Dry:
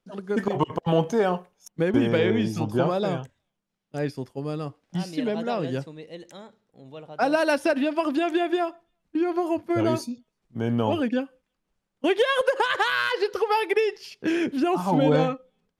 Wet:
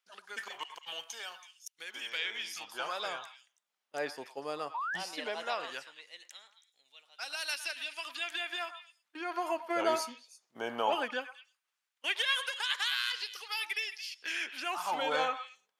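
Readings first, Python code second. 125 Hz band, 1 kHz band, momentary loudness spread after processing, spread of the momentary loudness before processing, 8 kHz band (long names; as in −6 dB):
−34.0 dB, −8.5 dB, 15 LU, 12 LU, +0.5 dB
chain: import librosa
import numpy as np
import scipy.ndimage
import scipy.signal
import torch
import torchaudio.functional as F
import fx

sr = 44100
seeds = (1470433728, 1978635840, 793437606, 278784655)

y = fx.filter_lfo_highpass(x, sr, shape='sine', hz=0.17, low_hz=700.0, high_hz=3300.0, q=0.86)
y = fx.echo_stepped(y, sr, ms=109, hz=1100.0, octaves=1.4, feedback_pct=70, wet_db=-8.5)
y = fx.spec_paint(y, sr, seeds[0], shape='rise', start_s=4.74, length_s=0.23, low_hz=870.0, high_hz=1900.0, level_db=-35.0)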